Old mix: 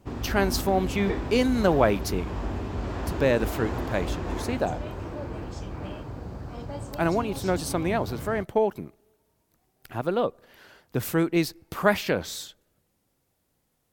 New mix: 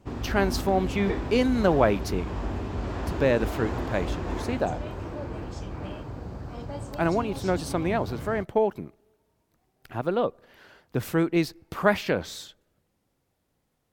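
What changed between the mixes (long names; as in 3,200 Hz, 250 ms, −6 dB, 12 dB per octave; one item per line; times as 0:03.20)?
background: add high-shelf EQ 5,600 Hz +6.5 dB
master: add high-shelf EQ 6,200 Hz −8.5 dB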